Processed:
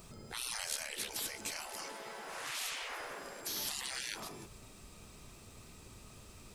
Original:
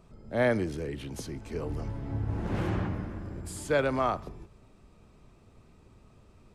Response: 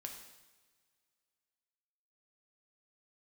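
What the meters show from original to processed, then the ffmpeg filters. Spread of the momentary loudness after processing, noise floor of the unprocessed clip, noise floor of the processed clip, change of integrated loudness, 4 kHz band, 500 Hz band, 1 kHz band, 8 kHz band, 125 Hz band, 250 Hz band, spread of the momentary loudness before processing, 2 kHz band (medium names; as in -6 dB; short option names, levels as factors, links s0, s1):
17 LU, -59 dBFS, -56 dBFS, -8.0 dB, +7.5 dB, -19.0 dB, -10.5 dB, +8.0 dB, -23.0 dB, -20.5 dB, 12 LU, -5.5 dB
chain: -af "crystalizer=i=6.5:c=0,afftfilt=real='re*lt(hypot(re,im),0.0316)':imag='im*lt(hypot(re,im),0.0316)':win_size=1024:overlap=0.75,volume=1.12"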